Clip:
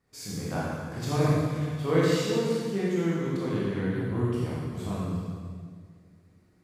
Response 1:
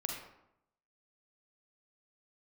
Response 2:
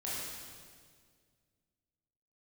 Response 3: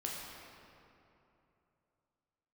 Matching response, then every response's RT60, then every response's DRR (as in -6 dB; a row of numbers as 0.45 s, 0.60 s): 2; 0.80 s, 1.9 s, 2.9 s; 0.5 dB, -8.0 dB, -3.5 dB